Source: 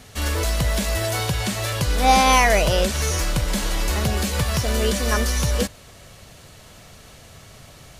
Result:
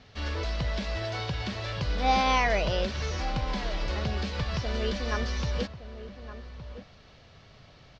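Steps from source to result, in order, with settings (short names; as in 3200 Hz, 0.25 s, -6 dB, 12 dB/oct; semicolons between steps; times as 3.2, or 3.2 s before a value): steep low-pass 5200 Hz 36 dB/oct; outdoor echo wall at 200 m, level -12 dB; gain -8.5 dB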